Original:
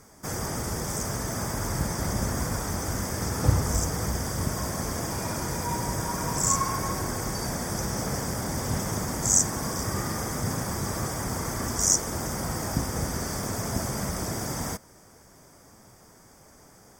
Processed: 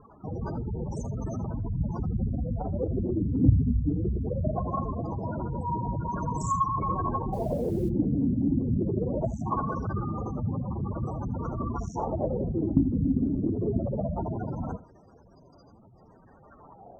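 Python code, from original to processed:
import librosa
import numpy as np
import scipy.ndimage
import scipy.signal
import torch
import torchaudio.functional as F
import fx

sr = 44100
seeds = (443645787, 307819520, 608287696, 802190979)

p1 = fx.spec_gate(x, sr, threshold_db=-10, keep='strong')
p2 = fx.filter_lfo_lowpass(p1, sr, shape='sine', hz=0.21, low_hz=270.0, high_hz=4200.0, q=6.2)
p3 = p2 + fx.echo_single(p2, sr, ms=79, db=-17.0, dry=0)
p4 = fx.dmg_noise_colour(p3, sr, seeds[0], colour='white', level_db=-61.0, at=(7.32, 7.88), fade=0.02)
y = fx.cheby_harmonics(p4, sr, harmonics=(5,), levels_db=(-31,), full_scale_db=-6.5)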